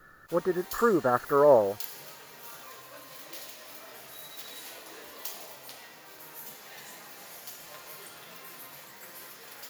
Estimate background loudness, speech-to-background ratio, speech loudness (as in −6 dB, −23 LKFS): −43.0 LKFS, 18.0 dB, −25.0 LKFS